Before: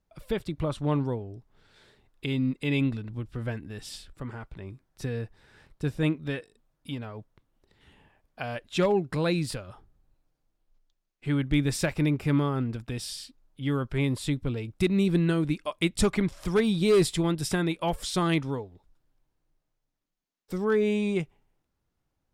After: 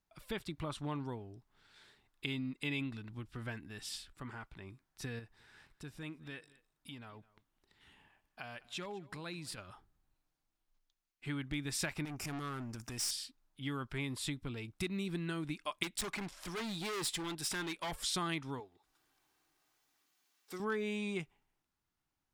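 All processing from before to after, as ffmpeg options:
ffmpeg -i in.wav -filter_complex "[0:a]asettb=1/sr,asplit=3[link_01][link_02][link_03];[link_01]atrim=end=5.194[link_04];[link_02]atrim=start=5.19:end=9.58,asetpts=PTS-STARTPTS,afade=type=in:duration=0.004:curve=qsin,afade=type=out:start_time=4.386:duration=0.004:curve=qsin,acompressor=threshold=-41dB:ratio=2:attack=3.2:release=140:knee=1:detection=peak,aecho=1:1:207:0.0891,atrim=end_sample=193599[link_05];[link_03]atrim=start=9.576[link_06];[link_04][link_05]acrossfade=duration=0.004:curve1=hsin:curve2=qsin[link_07];[link_07][link_06]acrossfade=duration=0.004:curve1=qsin:curve2=hsin,asettb=1/sr,asplit=3[link_08][link_09][link_10];[link_08]atrim=end=12.054[link_11];[link_09]atrim=start=12.05:end=13.11,asetpts=PTS-STARTPTS,afade=type=in:duration=0.004:curve=qsin,afade=type=out:start_time=1.056:duration=0.004:curve=qsin,highshelf=frequency=4700:width_type=q:width=3:gain=7,acompressor=mode=upward:threshold=-26dB:ratio=2.5:attack=3.2:release=140:knee=2.83:detection=peak,aeval=exprs='(tanh(28.2*val(0)+0.4)-tanh(0.4))/28.2':channel_layout=same[link_12];[link_10]atrim=start=13.106[link_13];[link_11][link_12]acrossfade=duration=0.004:curve1=hsin:curve2=qsin[link_14];[link_14][link_13]acrossfade=duration=0.004:curve1=qsin:curve2=hsin,asettb=1/sr,asplit=3[link_15][link_16][link_17];[link_15]atrim=end=15.834[link_18];[link_16]atrim=start=15.83:end=17.92,asetpts=PTS-STARTPTS,afade=type=in:duration=0.004:curve=qsin,afade=type=out:start_time=2.086:duration=0.004:curve=qsin,equalizer=frequency=83:width=0.74:gain=-11.5,bandreject=frequency=1200:width=17,asoftclip=type=hard:threshold=-29.5dB[link_19];[link_17]atrim=start=17.916[link_20];[link_18][link_19]acrossfade=duration=0.004:curve1=hsin:curve2=qsin[link_21];[link_21][link_20]acrossfade=duration=0.004:curve1=qsin:curve2=hsin,asettb=1/sr,asplit=3[link_22][link_23][link_24];[link_22]atrim=end=18.604[link_25];[link_23]atrim=start=18.6:end=20.6,asetpts=PTS-STARTPTS,afade=type=in:duration=0.004:curve=qsin,afade=type=out:start_time=1.996:duration=0.004:curve=qsin,highpass=frequency=370:poles=1,aecho=1:1:2.6:0.33,atrim=end_sample=88200,acompressor=mode=upward:threshold=-58dB:ratio=2.5:attack=3.2:release=140:knee=2.83:detection=peak[link_26];[link_24]atrim=start=20.596[link_27];[link_25][link_26]acrossfade=duration=0.004:curve1=hsin:curve2=qsin[link_28];[link_28][link_27]acrossfade=duration=0.004:curve1=qsin:curve2=hsin,equalizer=frequency=520:width=1.9:gain=-9,acompressor=threshold=-27dB:ratio=6,lowshelf=frequency=270:gain=-10.5,volume=-2dB" out.wav

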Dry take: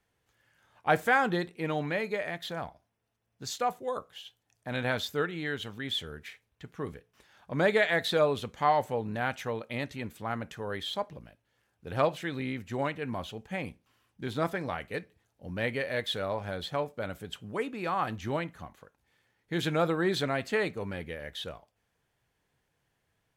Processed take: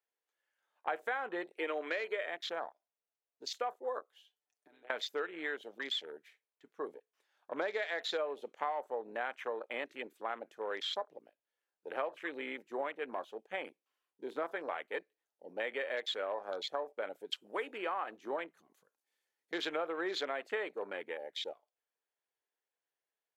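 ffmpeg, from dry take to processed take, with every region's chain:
ffmpeg -i in.wav -filter_complex "[0:a]asettb=1/sr,asplit=3[link_01][link_02][link_03];[link_01]atrim=end=1.514[link_04];[link_02]atrim=start=1.51:end=2.26,asetpts=PTS-STARTPTS,afade=type=in:duration=0.004:curve=qsin,afade=type=out:start_time=0.746:duration=0.004:curve=qsin,highpass=320,equalizer=frequency=840:width_type=o:width=0.35:gain=-13.5,acontrast=21[link_05];[link_03]atrim=start=2.256[link_06];[link_04][link_05]acrossfade=duration=0.004:curve1=hsin:curve2=qsin[link_07];[link_07][link_06]acrossfade=duration=0.004:curve1=qsin:curve2=hsin,asettb=1/sr,asplit=3[link_08][link_09][link_10];[link_08]atrim=end=4.254[link_11];[link_09]atrim=start=4.25:end=4.9,asetpts=PTS-STARTPTS,afade=type=in:duration=0.004:curve=qsin,afade=type=out:start_time=0.646:duration=0.004:curve=qsin,highpass=frequency=160:poles=1,acompressor=threshold=-47dB:ratio=10:attack=3.2:release=140:knee=1:detection=peak,aecho=1:1:6.8:0.56,atrim=end_sample=28665[link_12];[link_10]atrim=start=4.896[link_13];[link_11][link_12]acrossfade=duration=0.004:curve1=hsin:curve2=qsin[link_14];[link_14][link_13]acrossfade=duration=0.004:curve1=qsin:curve2=hsin,asettb=1/sr,asplit=3[link_15][link_16][link_17];[link_15]atrim=end=17.314[link_18];[link_16]atrim=start=17.31:end=17.78,asetpts=PTS-STARTPTS,afade=type=in:duration=0.004:curve=qsin,afade=type=out:start_time=0.466:duration=0.004:curve=qsin,highshelf=frequency=2800:gain=10.5,bandreject=frequency=6200:width=14[link_19];[link_17]atrim=start=17.776[link_20];[link_18][link_19]acrossfade=duration=0.004:curve1=hsin:curve2=qsin[link_21];[link_21][link_20]acrossfade=duration=0.004:curve1=qsin:curve2=hsin,asettb=1/sr,asplit=3[link_22][link_23][link_24];[link_22]atrim=end=18.574[link_25];[link_23]atrim=start=18.57:end=19.53,asetpts=PTS-STARTPTS,afade=type=in:duration=0.004:curve=qsin,afade=type=out:start_time=0.956:duration=0.004:curve=qsin,bass=frequency=250:gain=10,treble=frequency=4000:gain=10,acompressor=threshold=-43dB:ratio=12:attack=3.2:release=140:knee=1:detection=peak[link_26];[link_24]atrim=start=19.526[link_27];[link_25][link_26]acrossfade=duration=0.004:curve1=hsin:curve2=qsin[link_28];[link_28][link_27]acrossfade=duration=0.004:curve1=qsin:curve2=hsin,afwtdn=0.00891,highpass=frequency=370:width=0.5412,highpass=frequency=370:width=1.3066,acompressor=threshold=-33dB:ratio=6" out.wav

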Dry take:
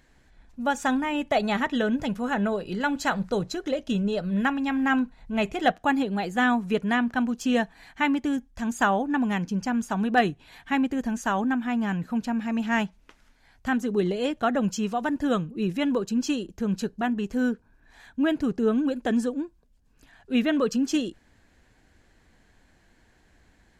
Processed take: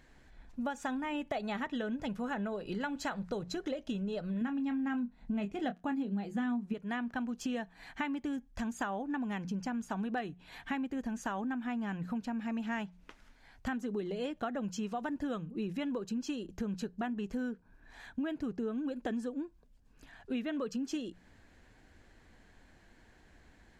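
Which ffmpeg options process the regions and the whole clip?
ffmpeg -i in.wav -filter_complex "[0:a]asettb=1/sr,asplit=3[link_01][link_02][link_03];[link_01]atrim=end=4.414[link_04];[link_02]atrim=start=4.41:end=6.74,asetpts=PTS-STARTPTS,afade=type=in:duration=0.004:curve=qsin,afade=type=out:start_time=2.326:duration=0.004:curve=qsin,equalizer=frequency=220:width_type=o:width=1:gain=12,asplit=2[link_05][link_06];[link_06]adelay=25,volume=-10dB[link_07];[link_05][link_07]amix=inputs=2:normalize=0,atrim=end_sample=102753[link_08];[link_03]atrim=start=6.736[link_09];[link_04][link_08]acrossfade=duration=0.004:curve1=hsin:curve2=qsin[link_10];[link_10][link_09]acrossfade=duration=0.004:curve1=qsin:curve2=hsin,highshelf=frequency=5800:gain=-5.5,bandreject=frequency=60:width_type=h:width=6,bandreject=frequency=120:width_type=h:width=6,bandreject=frequency=180:width_type=h:width=6,acompressor=threshold=-34dB:ratio=6" out.wav

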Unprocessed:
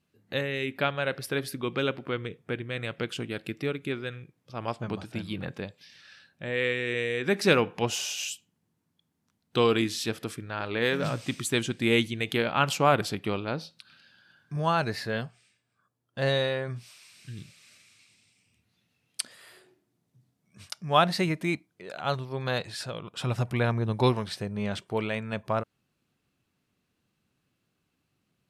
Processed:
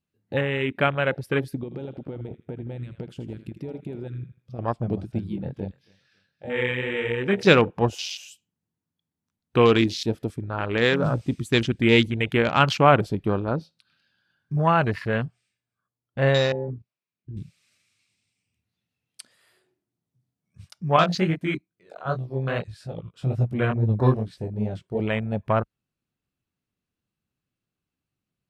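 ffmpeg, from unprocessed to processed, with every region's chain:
ffmpeg -i in.wav -filter_complex "[0:a]asettb=1/sr,asplit=3[link_01][link_02][link_03];[link_01]atrim=end=1.634[link_04];[link_02]atrim=start=1.63:end=4.59,asetpts=PTS-STARTPTS,afade=type=in:duration=0.004:curve=qsin,afade=type=out:start_time=2.956:duration=0.004:curve=qsin,acompressor=threshold=-35dB:ratio=12:attack=3.2:release=140:knee=1:detection=peak,aecho=1:1:81|162|243|324:0.299|0.11|0.0409|0.0151,atrim=end_sample=130536[link_05];[link_03]atrim=start=4.586[link_06];[link_04][link_05]acrossfade=duration=0.004:curve1=hsin:curve2=qsin[link_07];[link_07][link_06]acrossfade=duration=0.004:curve1=qsin:curve2=hsin,asettb=1/sr,asplit=3[link_08][link_09][link_10];[link_08]atrim=end=5.204[link_11];[link_09]atrim=start=5.2:end=7.47,asetpts=PTS-STARTPTS,afade=type=in:duration=0.004:curve=qsin,afade=type=out:start_time=2.266:duration=0.004:curve=qsin,flanger=delay=20:depth=5.7:speed=2.3,aecho=1:1:275|550|825:0.188|0.0527|0.0148,atrim=end_sample=100107[link_12];[link_10]atrim=start=7.466[link_13];[link_11][link_12]acrossfade=duration=0.004:curve1=hsin:curve2=qsin[link_14];[link_14][link_13]acrossfade=duration=0.004:curve1=qsin:curve2=hsin,asettb=1/sr,asplit=3[link_15][link_16][link_17];[link_15]atrim=end=16.524[link_18];[link_16]atrim=start=16.52:end=17.37,asetpts=PTS-STARTPTS,afade=type=in:duration=0.004:curve=qsin,afade=type=out:start_time=0.846:duration=0.004:curve=qsin,agate=range=-12dB:threshold=-45dB:ratio=16:release=100:detection=peak,bandpass=frequency=250:width_type=q:width=0.88,asplit=2[link_19][link_20];[link_20]adelay=28,volume=-8.5dB[link_21];[link_19][link_21]amix=inputs=2:normalize=0,atrim=end_sample=37485[link_22];[link_17]atrim=start=17.366[link_23];[link_18][link_22]acrossfade=duration=0.004:curve1=hsin:curve2=qsin[link_24];[link_24][link_23]acrossfade=duration=0.004:curve1=qsin:curve2=hsin,asettb=1/sr,asplit=3[link_25][link_26][link_27];[link_25]atrim=end=20.964[link_28];[link_26]atrim=start=20.96:end=25,asetpts=PTS-STARTPTS,afade=type=in:duration=0.004:curve=qsin,afade=type=out:start_time=4.036:duration=0.004:curve=qsin,bandreject=frequency=840:width=5.1,flanger=delay=17:depth=6:speed=2.4[link_29];[link_27]atrim=start=24.996[link_30];[link_28][link_29]acrossfade=duration=0.004:curve1=hsin:curve2=qsin[link_31];[link_31][link_30]acrossfade=duration=0.004:curve1=qsin:curve2=hsin,afwtdn=0.02,lowshelf=frequency=80:gain=9.5,volume=5.5dB" out.wav

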